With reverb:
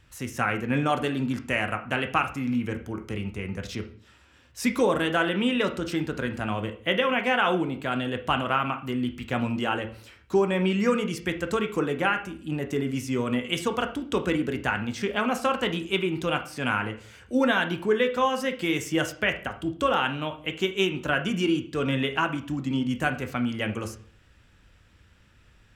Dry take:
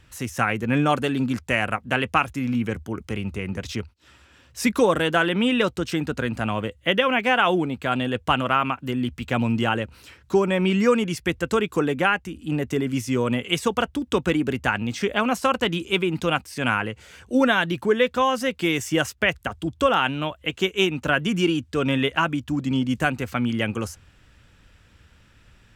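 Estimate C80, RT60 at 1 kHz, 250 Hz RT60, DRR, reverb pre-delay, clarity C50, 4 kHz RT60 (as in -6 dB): 17.0 dB, 0.45 s, 0.55 s, 6.0 dB, 13 ms, 12.0 dB, 0.40 s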